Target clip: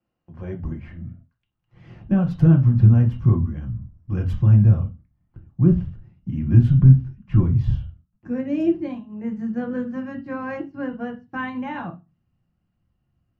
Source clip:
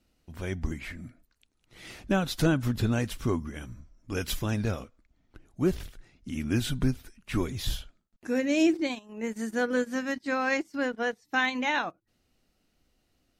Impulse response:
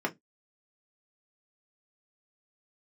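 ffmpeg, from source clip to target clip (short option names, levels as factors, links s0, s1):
-filter_complex "[0:a]highshelf=f=5600:g=-9,acrossover=split=750|6100[s0][s1][s2];[s0]agate=range=0.355:threshold=0.00158:ratio=16:detection=peak[s3];[s2]acrusher=bits=4:dc=4:mix=0:aa=0.000001[s4];[s3][s1][s4]amix=inputs=3:normalize=0,asubboost=boost=8.5:cutoff=150[s5];[1:a]atrim=start_sample=2205,asetrate=23814,aresample=44100[s6];[s5][s6]afir=irnorm=-1:irlink=0,volume=0.237"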